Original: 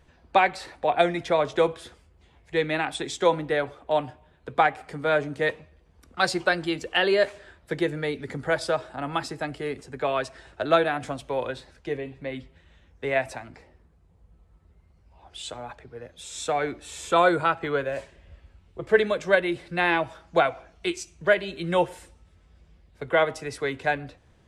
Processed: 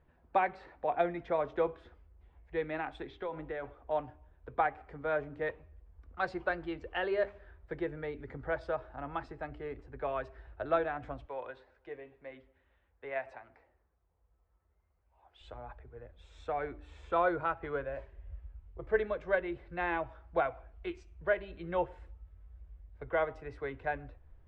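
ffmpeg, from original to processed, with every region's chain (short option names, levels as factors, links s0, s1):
-filter_complex "[0:a]asettb=1/sr,asplit=3[s0][s1][s2];[s0]atrim=end=3.074[s3];[s1]atrim=start=3.07:end=3.75,asetpts=PTS-STARTPTS,afade=t=in:d=0.004:c=qsin,afade=t=out:st=0.676:d=0.004:c=qsin,lowpass=f=3700:w=0.5412,lowpass=f=3700:w=1.3066,aemphasis=mode=production:type=50fm,acompressor=threshold=0.0631:ratio=6:attack=3.2:release=140:knee=1:detection=peak[s4];[s2]atrim=start=3.746[s5];[s3][s4]acrossfade=d=0.004:c1=hsin:c2=qsin[s6];[s6][s5]acrossfade=d=0.004:c1=qsin:c2=hsin,asettb=1/sr,asplit=3[s7][s8][s9];[s7]atrim=end=11.254[s10];[s8]atrim=start=11.25:end=15.41,asetpts=PTS-STARTPTS,afade=t=in:d=0.004:c=qsin,afade=t=out:st=4.156:d=0.004:c=qsin,highpass=f=610:p=1,asplit=2[s11][s12];[s12]adelay=110,lowpass=f=1700:p=1,volume=0.0794,asplit=2[s13][s14];[s14]adelay=110,lowpass=f=1700:p=1,volume=0.53,asplit=2[s15][s16];[s16]adelay=110,lowpass=f=1700:p=1,volume=0.53,asplit=2[s17][s18];[s18]adelay=110,lowpass=f=1700:p=1,volume=0.53[s19];[s11][s13][s15][s17][s19]amix=inputs=5:normalize=0,atrim=end_sample=183456[s20];[s9]atrim=start=15.406[s21];[s10][s20]acrossfade=d=0.004:c1=hsin:c2=qsin[s22];[s22][s21]acrossfade=d=0.004:c1=qsin:c2=hsin,lowpass=1700,bandreject=f=99.04:t=h:w=4,bandreject=f=198.08:t=h:w=4,bandreject=f=297.12:t=h:w=4,bandreject=f=396.16:t=h:w=4,asubboost=boost=11:cutoff=52,volume=0.376"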